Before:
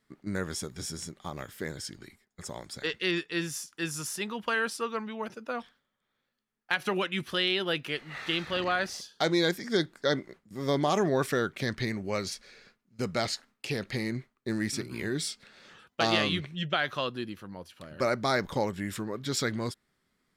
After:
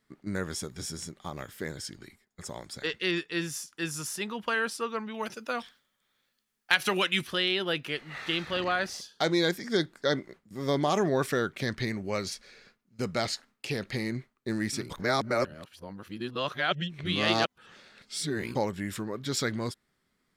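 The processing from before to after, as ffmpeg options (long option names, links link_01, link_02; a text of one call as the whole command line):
ffmpeg -i in.wav -filter_complex "[0:a]asettb=1/sr,asplit=3[link_01][link_02][link_03];[link_01]atrim=end=5.144[link_04];[link_02]atrim=start=5.14:end=7.27,asetpts=PTS-STARTPTS,afade=type=in:duration=0.004:curve=qsin,afade=type=out:start_time=2.126:duration=0.004:curve=qsin,highshelf=frequency=2100:gain=11[link_05];[link_03]atrim=start=7.266[link_06];[link_04][link_05]acrossfade=duration=0.004:curve1=hsin:curve2=qsin[link_07];[link_07][link_06]acrossfade=duration=0.004:curve1=qsin:curve2=hsin,asplit=3[link_08][link_09][link_10];[link_08]atrim=end=14.902[link_11];[link_09]atrim=start=14.898:end=18.552,asetpts=PTS-STARTPTS,areverse[link_12];[link_10]atrim=start=18.548[link_13];[link_11][link_12]acrossfade=duration=0.004:curve1=hsin:curve2=hsin[link_14];[link_14][link_13]acrossfade=duration=0.004:curve1=hsin:curve2=hsin" out.wav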